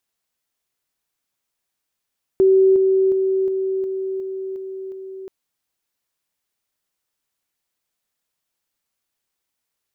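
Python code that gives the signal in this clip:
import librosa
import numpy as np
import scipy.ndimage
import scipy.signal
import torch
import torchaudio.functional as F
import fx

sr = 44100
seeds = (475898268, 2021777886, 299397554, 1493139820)

y = fx.level_ladder(sr, hz=382.0, from_db=-10.0, step_db=-3.0, steps=8, dwell_s=0.36, gap_s=0.0)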